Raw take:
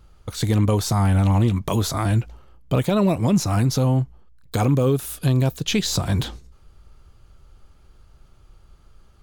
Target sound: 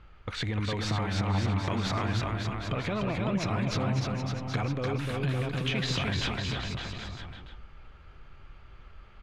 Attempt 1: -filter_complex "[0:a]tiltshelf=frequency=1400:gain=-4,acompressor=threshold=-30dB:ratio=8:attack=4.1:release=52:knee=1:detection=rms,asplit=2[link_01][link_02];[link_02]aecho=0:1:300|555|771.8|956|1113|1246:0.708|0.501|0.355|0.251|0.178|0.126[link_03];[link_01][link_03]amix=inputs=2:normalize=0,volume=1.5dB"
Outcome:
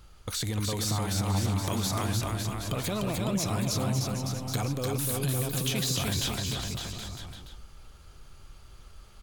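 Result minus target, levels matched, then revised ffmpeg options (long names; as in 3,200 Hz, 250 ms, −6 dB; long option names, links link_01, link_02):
2,000 Hz band −5.0 dB
-filter_complex "[0:a]lowpass=frequency=2200:width_type=q:width=1.6,tiltshelf=frequency=1400:gain=-4,acompressor=threshold=-30dB:ratio=8:attack=4.1:release=52:knee=1:detection=rms,asplit=2[link_01][link_02];[link_02]aecho=0:1:300|555|771.8|956|1113|1246:0.708|0.501|0.355|0.251|0.178|0.126[link_03];[link_01][link_03]amix=inputs=2:normalize=0,volume=1.5dB"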